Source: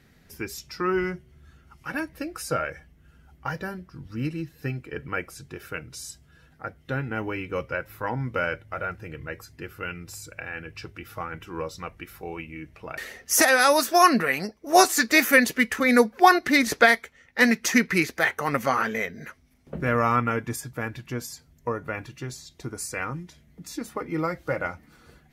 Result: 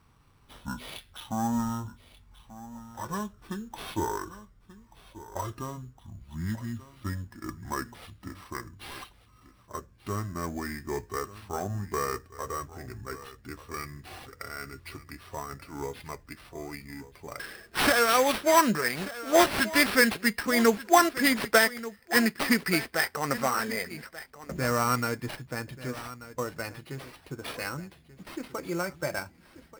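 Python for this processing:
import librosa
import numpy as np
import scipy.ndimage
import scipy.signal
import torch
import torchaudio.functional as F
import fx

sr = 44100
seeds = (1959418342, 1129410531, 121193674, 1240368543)

y = fx.speed_glide(x, sr, from_pct=60, to_pct=110)
y = fx.sample_hold(y, sr, seeds[0], rate_hz=6900.0, jitter_pct=0)
y = y + 10.0 ** (-16.0 / 20.0) * np.pad(y, (int(1185 * sr / 1000.0), 0))[:len(y)]
y = F.gain(torch.from_numpy(y), -4.0).numpy()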